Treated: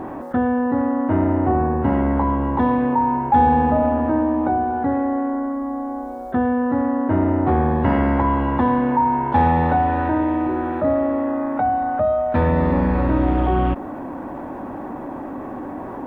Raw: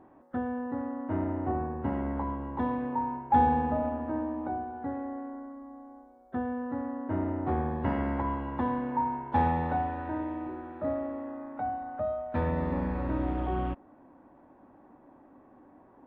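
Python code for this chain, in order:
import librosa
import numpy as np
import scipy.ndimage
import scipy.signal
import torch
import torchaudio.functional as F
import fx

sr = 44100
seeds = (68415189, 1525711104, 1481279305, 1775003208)

y = fx.env_flatten(x, sr, amount_pct=50)
y = y * librosa.db_to_amplitude(7.0)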